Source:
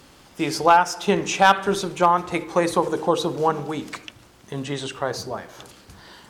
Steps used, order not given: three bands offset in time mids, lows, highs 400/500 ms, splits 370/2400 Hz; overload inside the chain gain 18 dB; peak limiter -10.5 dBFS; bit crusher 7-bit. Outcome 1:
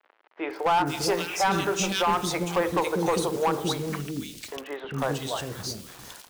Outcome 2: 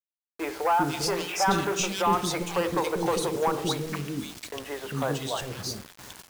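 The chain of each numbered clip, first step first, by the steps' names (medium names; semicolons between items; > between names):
bit crusher > three bands offset in time > peak limiter > overload inside the chain; peak limiter > overload inside the chain > three bands offset in time > bit crusher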